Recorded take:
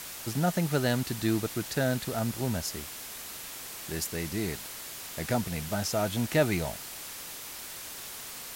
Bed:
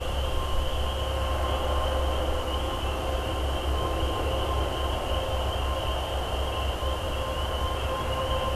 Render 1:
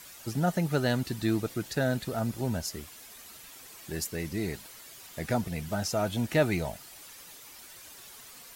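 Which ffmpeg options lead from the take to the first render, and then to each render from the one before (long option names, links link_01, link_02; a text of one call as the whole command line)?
ffmpeg -i in.wav -af "afftdn=noise_reduction=10:noise_floor=-42" out.wav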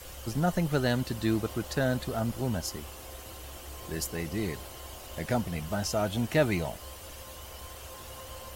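ffmpeg -i in.wav -i bed.wav -filter_complex "[1:a]volume=-17.5dB[link_01];[0:a][link_01]amix=inputs=2:normalize=0" out.wav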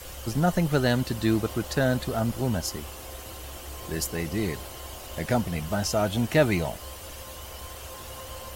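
ffmpeg -i in.wav -af "volume=4dB" out.wav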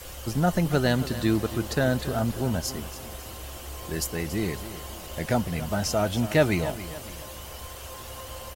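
ffmpeg -i in.wav -af "aecho=1:1:279|558|837|1116:0.2|0.0818|0.0335|0.0138" out.wav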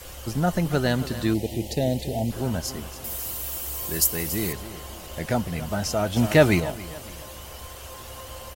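ffmpeg -i in.wav -filter_complex "[0:a]asplit=3[link_01][link_02][link_03];[link_01]afade=type=out:start_time=1.33:duration=0.02[link_04];[link_02]asuperstop=centerf=1300:order=8:qfactor=1.2,afade=type=in:start_time=1.33:duration=0.02,afade=type=out:start_time=2.3:duration=0.02[link_05];[link_03]afade=type=in:start_time=2.3:duration=0.02[link_06];[link_04][link_05][link_06]amix=inputs=3:normalize=0,asettb=1/sr,asplit=3[link_07][link_08][link_09];[link_07]atrim=end=3.044[link_10];[link_08]atrim=start=3.04:end=4.53,asetpts=PTS-STARTPTS,afade=type=in:duration=0.004:curve=qsin,afade=type=out:start_time=1.486:duration=0.004:curve=qsin,aemphasis=mode=production:type=50fm[link_11];[link_09]atrim=start=4.526[link_12];[link_10][link_11]acrossfade=duration=0.004:curve1=hsin:curve2=qsin[link_13];[link_13][link_12]acrossfade=duration=0.004:curve1=qsin:curve2=hsin,asettb=1/sr,asplit=3[link_14][link_15][link_16];[link_14]atrim=end=6.164[link_17];[link_15]atrim=start=6.16:end=6.6,asetpts=PTS-STARTPTS,afade=type=in:duration=0.004:curve=qsin,afade=type=out:start_time=0.436:duration=0.004:curve=qsin,acontrast=20[link_18];[link_16]atrim=start=6.596[link_19];[link_17][link_18]acrossfade=duration=0.004:curve1=hsin:curve2=qsin[link_20];[link_20][link_19]acrossfade=duration=0.004:curve1=qsin:curve2=hsin" out.wav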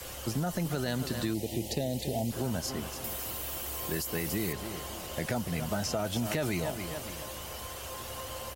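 ffmpeg -i in.wav -filter_complex "[0:a]alimiter=limit=-17dB:level=0:latency=1:release=19,acrossover=split=86|4200[link_01][link_02][link_03];[link_01]acompressor=threshold=-53dB:ratio=4[link_04];[link_02]acompressor=threshold=-29dB:ratio=4[link_05];[link_03]acompressor=threshold=-37dB:ratio=4[link_06];[link_04][link_05][link_06]amix=inputs=3:normalize=0" out.wav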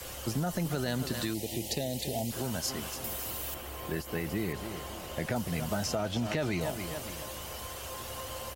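ffmpeg -i in.wav -filter_complex "[0:a]asettb=1/sr,asplit=3[link_01][link_02][link_03];[link_01]atrim=end=1.144[link_04];[link_02]atrim=start=1.14:end=2.96,asetpts=PTS-STARTPTS,afade=type=in:duration=0.004:curve=qsin,afade=type=out:start_time=1.816:duration=0.004:curve=qsin,tiltshelf=frequency=970:gain=-3[link_05];[link_03]atrim=start=2.956[link_06];[link_04][link_05]acrossfade=duration=0.004:curve1=hsin:curve2=qsin[link_07];[link_07][link_06]acrossfade=duration=0.004:curve1=qsin:curve2=hsin,asettb=1/sr,asplit=3[link_08][link_09][link_10];[link_08]atrim=end=3.544[link_11];[link_09]atrim=start=3.54:end=5.36,asetpts=PTS-STARTPTS,afade=type=in:duration=0.004:curve=qsin,afade=type=out:start_time=1.816:duration=0.004:curve=qsin,acrossover=split=3200[link_12][link_13];[link_13]acompressor=threshold=-45dB:ratio=4:attack=1:release=60[link_14];[link_12][link_14]amix=inputs=2:normalize=0[link_15];[link_10]atrim=start=5.356[link_16];[link_11][link_15]acrossfade=duration=0.004:curve1=hsin:curve2=qsin[link_17];[link_17][link_16]acrossfade=duration=0.004:curve1=qsin:curve2=hsin,asettb=1/sr,asplit=3[link_18][link_19][link_20];[link_18]atrim=end=5.954[link_21];[link_19]atrim=start=5.95:end=6.61,asetpts=PTS-STARTPTS,afade=type=in:duration=0.004:curve=qsin,afade=type=out:start_time=0.656:duration=0.004:curve=qsin,acrossover=split=6200[link_22][link_23];[link_23]acompressor=threshold=-56dB:ratio=4:attack=1:release=60[link_24];[link_22][link_24]amix=inputs=2:normalize=0[link_25];[link_20]atrim=start=6.606[link_26];[link_21][link_25]acrossfade=duration=0.004:curve1=hsin:curve2=qsin[link_27];[link_27][link_26]acrossfade=duration=0.004:curve1=qsin:curve2=hsin" out.wav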